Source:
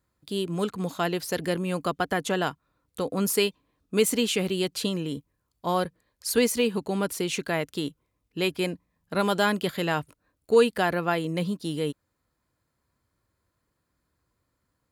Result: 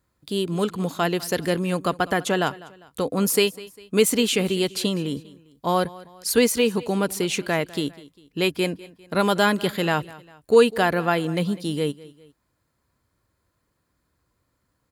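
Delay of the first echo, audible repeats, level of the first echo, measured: 200 ms, 2, −20.0 dB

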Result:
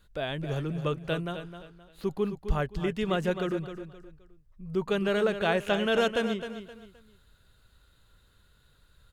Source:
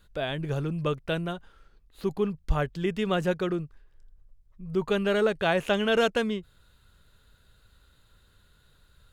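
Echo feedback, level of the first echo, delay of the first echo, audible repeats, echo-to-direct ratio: 31%, −10.0 dB, 261 ms, 3, −9.5 dB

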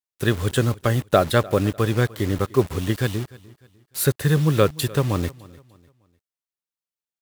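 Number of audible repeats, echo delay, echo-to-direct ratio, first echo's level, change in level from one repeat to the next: 2, 300 ms, −21.0 dB, −21.5 dB, −9.0 dB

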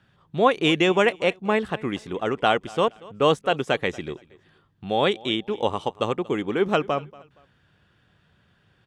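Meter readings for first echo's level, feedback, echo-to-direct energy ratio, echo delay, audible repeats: −22.0 dB, 30%, −21.5 dB, 234 ms, 2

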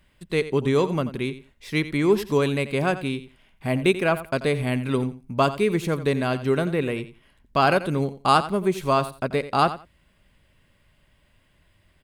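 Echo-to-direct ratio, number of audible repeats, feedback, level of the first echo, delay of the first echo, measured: −14.0 dB, 2, 17%, −14.0 dB, 87 ms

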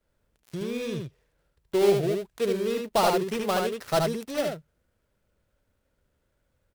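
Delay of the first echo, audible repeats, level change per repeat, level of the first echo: 75 ms, 1, repeats not evenly spaced, −3.5 dB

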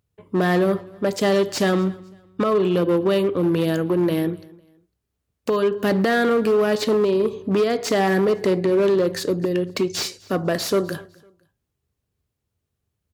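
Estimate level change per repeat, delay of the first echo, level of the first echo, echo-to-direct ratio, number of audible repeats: −10.0 dB, 252 ms, −24.0 dB, −23.5 dB, 2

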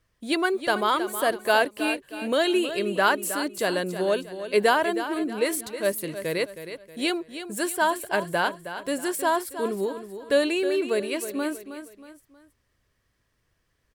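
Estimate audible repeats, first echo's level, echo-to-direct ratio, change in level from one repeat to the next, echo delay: 3, −11.0 dB, −10.5 dB, −8.0 dB, 317 ms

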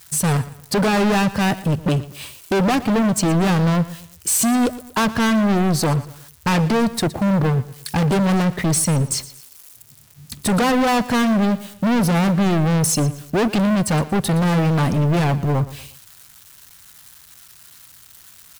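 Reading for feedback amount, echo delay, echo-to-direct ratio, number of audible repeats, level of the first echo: 37%, 117 ms, −16.5 dB, 3, −17.0 dB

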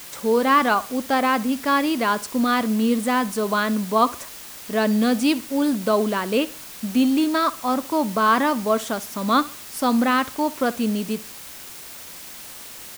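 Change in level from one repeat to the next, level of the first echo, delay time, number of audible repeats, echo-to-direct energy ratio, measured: −9.5 dB, −19.0 dB, 64 ms, 2, −18.5 dB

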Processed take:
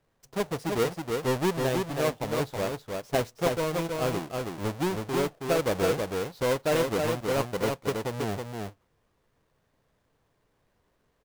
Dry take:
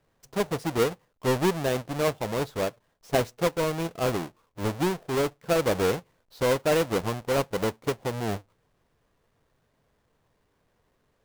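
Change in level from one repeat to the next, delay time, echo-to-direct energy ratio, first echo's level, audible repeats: repeats not evenly spaced, 322 ms, −4.0 dB, −4.0 dB, 1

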